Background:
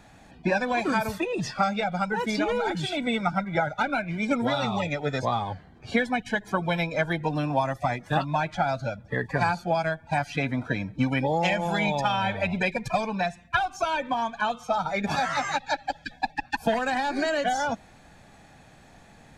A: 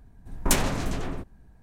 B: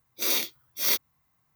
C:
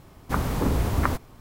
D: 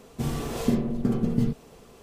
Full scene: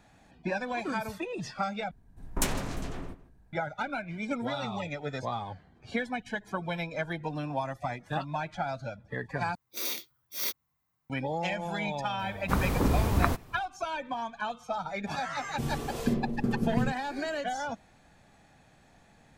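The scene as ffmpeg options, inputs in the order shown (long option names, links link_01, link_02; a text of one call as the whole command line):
ffmpeg -i bed.wav -i cue0.wav -i cue1.wav -i cue2.wav -i cue3.wav -filter_complex "[0:a]volume=-7.5dB[link_01];[1:a]asplit=2[link_02][link_03];[link_03]adelay=157.4,volume=-17dB,highshelf=frequency=4000:gain=-3.54[link_04];[link_02][link_04]amix=inputs=2:normalize=0[link_05];[link_01]asplit=3[link_06][link_07][link_08];[link_06]atrim=end=1.914[link_09];[link_05]atrim=end=1.62,asetpts=PTS-STARTPTS,volume=-6.5dB[link_10];[link_07]atrim=start=3.526:end=9.554[link_11];[2:a]atrim=end=1.55,asetpts=PTS-STARTPTS,volume=-8dB[link_12];[link_08]atrim=start=11.096[link_13];[3:a]atrim=end=1.4,asetpts=PTS-STARTPTS,volume=-2dB,afade=type=in:duration=0.004:curve=hsin,afade=type=out:start_time=1.396:duration=0.004:curve=hsin,adelay=12190[link_14];[4:a]atrim=end=2.02,asetpts=PTS-STARTPTS,volume=-4.5dB,afade=type=in:duration=0.004:curve=hsin,afade=type=out:start_time=2.016:duration=0.004:curve=hsin,adelay=15390[link_15];[link_09][link_10]acrossfade=duration=0.004:curve1=hsin:curve2=hsin[link_16];[link_16][link_11]acrossfade=duration=0.004:curve1=hsin:curve2=hsin[link_17];[link_17][link_12]acrossfade=duration=0.004:curve1=hsin:curve2=hsin[link_18];[link_18][link_13]acrossfade=duration=0.004:curve1=hsin:curve2=hsin[link_19];[link_19][link_14][link_15]amix=inputs=3:normalize=0" out.wav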